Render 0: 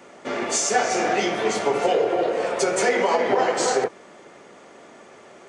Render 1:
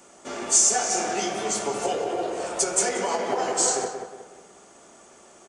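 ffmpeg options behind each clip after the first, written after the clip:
-filter_complex "[0:a]equalizer=f=125:t=o:w=1:g=-10,equalizer=f=250:t=o:w=1:g=-7,equalizer=f=500:t=o:w=1:g=-10,equalizer=f=1k:t=o:w=1:g=-5,equalizer=f=2k:t=o:w=1:g=-12,equalizer=f=4k:t=o:w=1:g=-6,equalizer=f=8k:t=o:w=1:g=6,asplit=2[a][b];[b]adelay=182,lowpass=f=2.1k:p=1,volume=-6dB,asplit=2[c][d];[d]adelay=182,lowpass=f=2.1k:p=1,volume=0.41,asplit=2[e][f];[f]adelay=182,lowpass=f=2.1k:p=1,volume=0.41,asplit=2[g][h];[h]adelay=182,lowpass=f=2.1k:p=1,volume=0.41,asplit=2[i][j];[j]adelay=182,lowpass=f=2.1k:p=1,volume=0.41[k];[a][c][e][g][i][k]amix=inputs=6:normalize=0,volume=4dB"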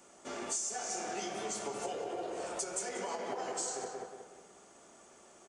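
-af "acompressor=threshold=-28dB:ratio=4,volume=-7.5dB"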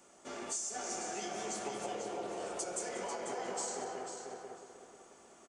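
-filter_complex "[0:a]asplit=2[a][b];[b]adelay=494,lowpass=f=3.9k:p=1,volume=-3dB,asplit=2[c][d];[d]adelay=494,lowpass=f=3.9k:p=1,volume=0.27,asplit=2[e][f];[f]adelay=494,lowpass=f=3.9k:p=1,volume=0.27,asplit=2[g][h];[h]adelay=494,lowpass=f=3.9k:p=1,volume=0.27[i];[a][c][e][g][i]amix=inputs=5:normalize=0,volume=-2.5dB"

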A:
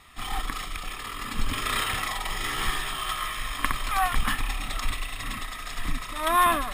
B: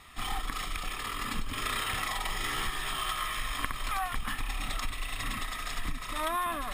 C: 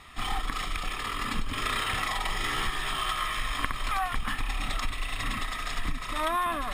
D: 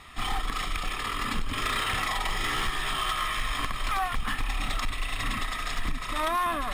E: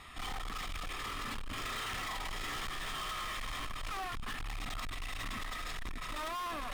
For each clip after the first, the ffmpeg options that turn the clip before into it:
-af "acompressor=threshold=-28dB:ratio=12"
-af "highshelf=f=9.2k:g=-9.5,volume=3.5dB"
-af "asoftclip=type=hard:threshold=-23dB,volume=1.5dB"
-af "asoftclip=type=tanh:threshold=-33.5dB,volume=-3dB"

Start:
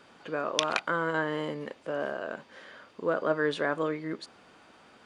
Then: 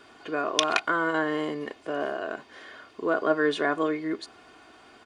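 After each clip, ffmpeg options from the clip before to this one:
-af "aecho=1:1:2.8:0.58,volume=2.5dB"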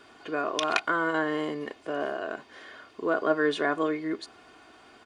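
-af "alimiter=level_in=7.5dB:limit=-1dB:release=50:level=0:latency=1,volume=-8.5dB"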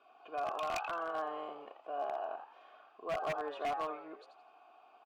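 -filter_complex "[0:a]asplit=3[a][b][c];[a]bandpass=f=730:t=q:w=8,volume=0dB[d];[b]bandpass=f=1.09k:t=q:w=8,volume=-6dB[e];[c]bandpass=f=2.44k:t=q:w=8,volume=-9dB[f];[d][e][f]amix=inputs=3:normalize=0,asplit=5[g][h][i][j][k];[h]adelay=84,afreqshift=110,volume=-8.5dB[l];[i]adelay=168,afreqshift=220,volume=-18.1dB[m];[j]adelay=252,afreqshift=330,volume=-27.8dB[n];[k]adelay=336,afreqshift=440,volume=-37.4dB[o];[g][l][m][n][o]amix=inputs=5:normalize=0,aeval=exprs='0.0335*(abs(mod(val(0)/0.0335+3,4)-2)-1)':c=same"

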